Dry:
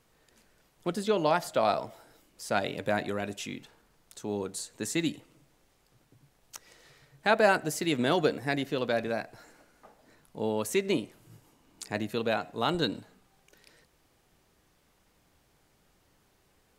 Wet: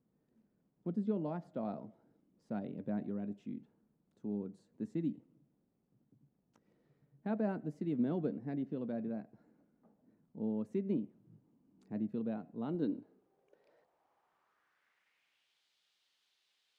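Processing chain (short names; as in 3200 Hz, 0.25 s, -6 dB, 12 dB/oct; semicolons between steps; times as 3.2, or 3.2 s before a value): band-pass sweep 210 Hz -> 3600 Hz, 12.6–15.64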